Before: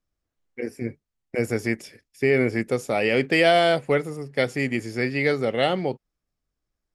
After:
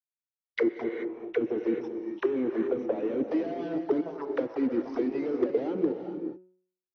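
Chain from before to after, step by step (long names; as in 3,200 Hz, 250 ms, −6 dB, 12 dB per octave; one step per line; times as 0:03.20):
stylus tracing distortion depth 0.066 ms
reverb reduction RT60 1.1 s
low-shelf EQ 210 Hz −12 dB
fuzz pedal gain 41 dB, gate −44 dBFS
envelope filter 300–3,700 Hz, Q 6.7, down, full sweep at −13.5 dBFS
reverb whose tail is shaped and stops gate 460 ms rising, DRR 6.5 dB
hard clipping −15 dBFS, distortion −31 dB
hum removal 183.1 Hz, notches 16
0:00.82–0:03.28: parametric band 4,800 Hz −15 dB 0.31 octaves
level −1 dB
AC-3 32 kbit/s 44,100 Hz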